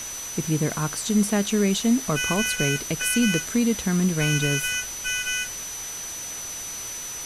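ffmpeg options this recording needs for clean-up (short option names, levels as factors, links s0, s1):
-af "bandreject=f=6000:w=30,afftdn=nr=30:nf=-34"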